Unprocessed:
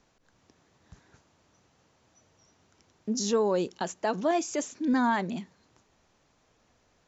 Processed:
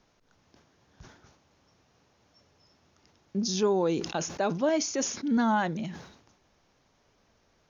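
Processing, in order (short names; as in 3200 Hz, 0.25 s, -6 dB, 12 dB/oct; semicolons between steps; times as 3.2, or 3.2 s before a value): speed mistake 48 kHz file played as 44.1 kHz; sustainer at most 79 dB/s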